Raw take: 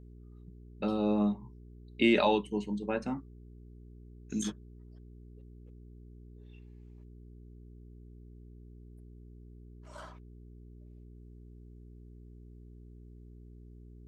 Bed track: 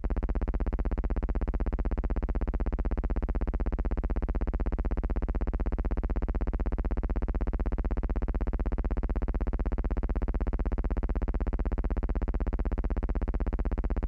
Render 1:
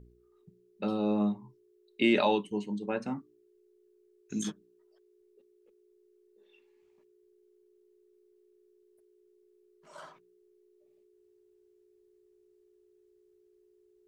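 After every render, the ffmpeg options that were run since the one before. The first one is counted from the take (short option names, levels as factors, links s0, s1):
-af "bandreject=f=60:t=h:w=4,bandreject=f=120:t=h:w=4,bandreject=f=180:t=h:w=4,bandreject=f=240:t=h:w=4,bandreject=f=300:t=h:w=4"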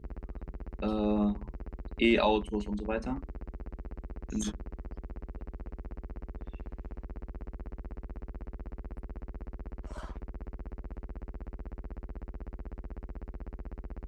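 -filter_complex "[1:a]volume=0.251[s0];[0:a][s0]amix=inputs=2:normalize=0"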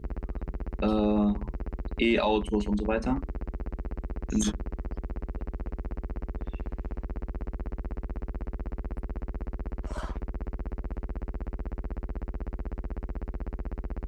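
-af "acontrast=79,alimiter=limit=0.168:level=0:latency=1:release=117"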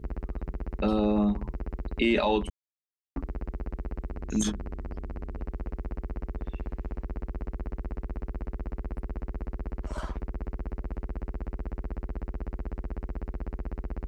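-filter_complex "[0:a]asettb=1/sr,asplit=3[s0][s1][s2];[s0]atrim=end=4.104[s3];[s1]atrim=start=4.1:end=5.41,asetpts=PTS-STARTPTS,afade=t=in:d=0.004:c=qsin,afade=t=out:st=1.306:d=0.004:c=qsin,bandreject=f=50:t=h:w=6,bandreject=f=100:t=h:w=6,bandreject=f=150:t=h:w=6,bandreject=f=200:t=h:w=6,bandreject=f=250:t=h:w=6,bandreject=f=300:t=h:w=6,bandreject=f=350:t=h:w=6,bandreject=f=400:t=h:w=6[s4];[s2]atrim=start=5.406[s5];[s3][s4]acrossfade=d=0.004:c1=hsin:c2=qsin[s6];[s6][s5]acrossfade=d=0.004:c1=qsin:c2=hsin,asplit=3[s7][s8][s9];[s7]atrim=end=2.5,asetpts=PTS-STARTPTS,afade=t=out:st=2.496:d=0.004:c=hsin[s10];[s8]atrim=start=2.5:end=3.16,asetpts=PTS-STARTPTS,volume=0[s11];[s9]atrim=start=3.16,asetpts=PTS-STARTPTS,afade=t=in:d=0.004:c=hsin[s12];[s10][s11][s12]concat=n=3:v=0:a=1"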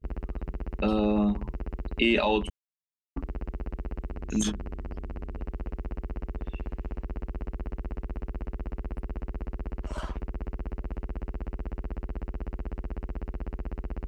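-af "agate=range=0.0224:threshold=0.0141:ratio=3:detection=peak,equalizer=f=2800:t=o:w=0.32:g=6.5"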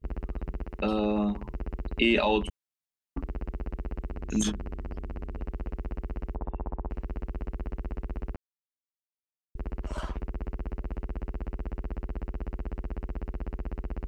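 -filter_complex "[0:a]asettb=1/sr,asplit=3[s0][s1][s2];[s0]atrim=end=0.634[s3];[s1]atrim=start=0.63:end=1.51,asetpts=PTS-STARTPTS,afade=t=in:d=0.004:c=qsin,afade=t=out:st=0.876:d=0.004:c=qsin,lowshelf=f=240:g=-5.5[s4];[s2]atrim=start=1.506[s5];[s3][s4]acrossfade=d=0.004:c1=hsin:c2=qsin[s6];[s6][s5]acrossfade=d=0.004:c1=qsin:c2=hsin,asplit=3[s7][s8][s9];[s7]afade=t=out:st=6.34:d=0.02[s10];[s8]lowpass=f=920:t=q:w=3.2,afade=t=in:st=6.34:d=0.02,afade=t=out:st=6.89:d=0.02[s11];[s9]afade=t=in:st=6.89:d=0.02[s12];[s10][s11][s12]amix=inputs=3:normalize=0,asplit=3[s13][s14][s15];[s13]atrim=end=8.36,asetpts=PTS-STARTPTS,afade=t=out:st=8.356:d=0.004:c=hsin[s16];[s14]atrim=start=8.36:end=9.55,asetpts=PTS-STARTPTS,volume=0[s17];[s15]atrim=start=9.55,asetpts=PTS-STARTPTS,afade=t=in:d=0.004:c=hsin[s18];[s16][s17][s18]concat=n=3:v=0:a=1"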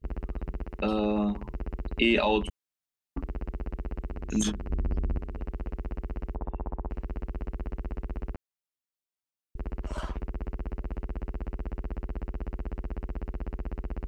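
-filter_complex "[0:a]asettb=1/sr,asplit=3[s0][s1][s2];[s0]atrim=end=4.704[s3];[s1]atrim=start=4.7:end=5.18,asetpts=PTS-STARTPTS,afade=t=in:d=0.004:c=qsin,afade=t=out:st=0.476:d=0.004:c=qsin,lowshelf=f=360:g=9[s4];[s2]atrim=start=5.176[s5];[s3][s4]acrossfade=d=0.004:c1=hsin:c2=qsin[s6];[s6][s5]acrossfade=d=0.004:c1=qsin:c2=hsin"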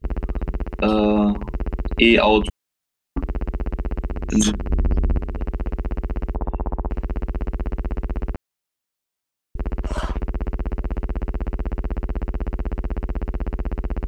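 -af "volume=2.99"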